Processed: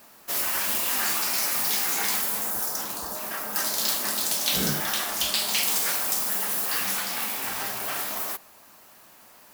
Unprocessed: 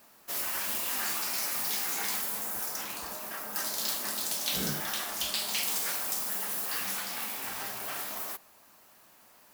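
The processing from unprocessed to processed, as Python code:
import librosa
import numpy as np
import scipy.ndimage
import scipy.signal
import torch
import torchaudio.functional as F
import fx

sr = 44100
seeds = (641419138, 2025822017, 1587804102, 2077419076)

y = fx.peak_eq(x, sr, hz=2400.0, db=fx.line((2.49, -4.5), (3.15, -13.0)), octaves=0.88, at=(2.49, 3.15), fade=0.02)
y = y * librosa.db_to_amplitude(6.5)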